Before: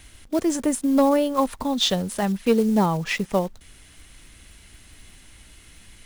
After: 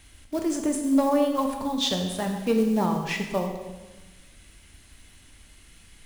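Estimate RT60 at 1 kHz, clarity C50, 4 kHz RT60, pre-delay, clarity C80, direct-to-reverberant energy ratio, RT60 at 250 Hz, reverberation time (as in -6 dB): 1.2 s, 5.5 dB, 1.1 s, 12 ms, 7.0 dB, 3.0 dB, 1.5 s, 1.2 s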